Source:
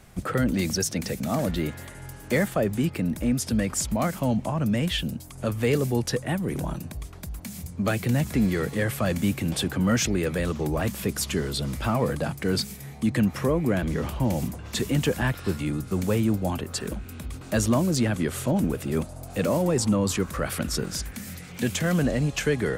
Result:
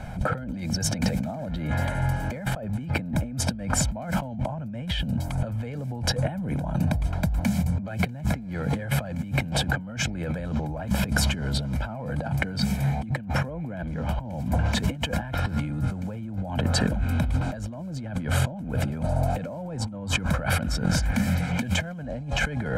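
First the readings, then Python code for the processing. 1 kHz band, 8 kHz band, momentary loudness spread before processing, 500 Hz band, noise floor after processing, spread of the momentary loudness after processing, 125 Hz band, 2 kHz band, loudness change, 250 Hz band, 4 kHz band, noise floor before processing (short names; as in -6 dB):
+0.5 dB, -2.5 dB, 9 LU, -6.5 dB, -35 dBFS, 6 LU, +1.5 dB, +1.5 dB, -1.5 dB, -3.5 dB, +0.5 dB, -42 dBFS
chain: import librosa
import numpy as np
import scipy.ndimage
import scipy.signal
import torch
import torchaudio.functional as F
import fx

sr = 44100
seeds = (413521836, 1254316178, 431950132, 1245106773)

y = fx.lowpass(x, sr, hz=1100.0, slope=6)
y = fx.low_shelf(y, sr, hz=120.0, db=-5.0)
y = y + 0.79 * np.pad(y, (int(1.3 * sr / 1000.0), 0))[:len(y)]
y = fx.over_compress(y, sr, threshold_db=-36.0, ratio=-1.0)
y = F.gain(torch.from_numpy(y), 7.5).numpy()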